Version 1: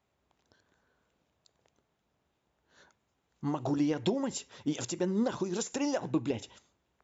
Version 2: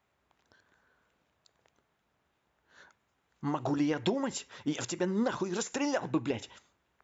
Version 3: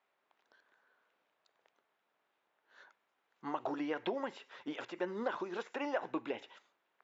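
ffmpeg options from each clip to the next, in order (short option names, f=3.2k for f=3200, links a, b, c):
-af "equalizer=f=1.6k:t=o:w=1.8:g=7,volume=-1dB"
-filter_complex "[0:a]acrossover=split=3300[a][b];[b]acompressor=threshold=-57dB:ratio=4:attack=1:release=60[c];[a][c]amix=inputs=2:normalize=0,highpass=410,lowpass=4.2k,volume=-2.5dB"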